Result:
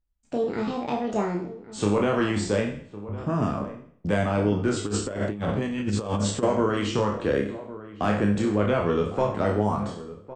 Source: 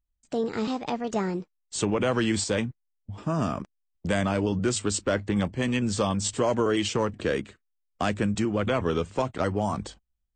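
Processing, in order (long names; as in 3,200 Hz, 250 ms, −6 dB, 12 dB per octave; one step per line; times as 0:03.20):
peak hold with a decay on every bin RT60 0.56 s
high-shelf EQ 2,900 Hz −12 dB
double-tracking delay 29 ms −5 dB
slap from a distant wall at 190 metres, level −15 dB
0:04.86–0:06.43: compressor whose output falls as the input rises −26 dBFS, ratio −0.5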